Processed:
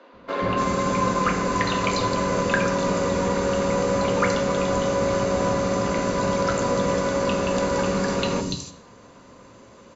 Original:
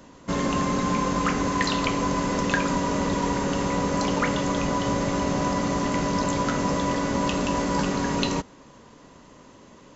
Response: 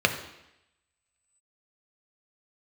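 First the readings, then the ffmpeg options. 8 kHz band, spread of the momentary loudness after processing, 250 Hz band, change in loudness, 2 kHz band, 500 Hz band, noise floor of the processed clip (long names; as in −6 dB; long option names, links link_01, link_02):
can't be measured, 2 LU, −1.0 dB, +2.0 dB, +2.0 dB, +6.0 dB, −49 dBFS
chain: -filter_complex "[0:a]highshelf=frequency=5400:gain=4.5,acrossover=split=310|3900[link_01][link_02][link_03];[link_01]adelay=130[link_04];[link_03]adelay=290[link_05];[link_04][link_02][link_05]amix=inputs=3:normalize=0,asplit=2[link_06][link_07];[1:a]atrim=start_sample=2205,afade=type=out:start_time=0.32:duration=0.01,atrim=end_sample=14553[link_08];[link_07][link_08]afir=irnorm=-1:irlink=0,volume=-11dB[link_09];[link_06][link_09]amix=inputs=2:normalize=0,volume=-3.5dB"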